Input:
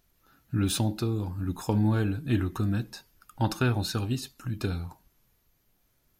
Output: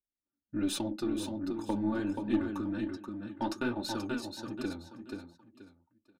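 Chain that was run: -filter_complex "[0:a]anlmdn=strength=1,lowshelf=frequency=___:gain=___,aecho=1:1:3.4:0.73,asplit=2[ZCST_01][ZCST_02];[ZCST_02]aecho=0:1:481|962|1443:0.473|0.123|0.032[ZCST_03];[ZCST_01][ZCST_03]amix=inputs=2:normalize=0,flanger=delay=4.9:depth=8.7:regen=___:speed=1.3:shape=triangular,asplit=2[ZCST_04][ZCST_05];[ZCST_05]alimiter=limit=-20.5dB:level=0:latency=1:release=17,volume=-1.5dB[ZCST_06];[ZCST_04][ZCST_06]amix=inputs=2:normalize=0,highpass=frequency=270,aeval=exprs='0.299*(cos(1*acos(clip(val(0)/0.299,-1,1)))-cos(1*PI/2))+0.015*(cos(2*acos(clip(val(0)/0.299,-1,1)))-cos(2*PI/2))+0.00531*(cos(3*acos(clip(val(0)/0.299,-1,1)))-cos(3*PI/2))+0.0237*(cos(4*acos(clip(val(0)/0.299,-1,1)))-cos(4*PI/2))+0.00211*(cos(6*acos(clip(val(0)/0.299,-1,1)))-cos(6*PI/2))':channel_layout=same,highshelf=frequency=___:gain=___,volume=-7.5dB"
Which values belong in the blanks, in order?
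460, 7, -42, 12000, -10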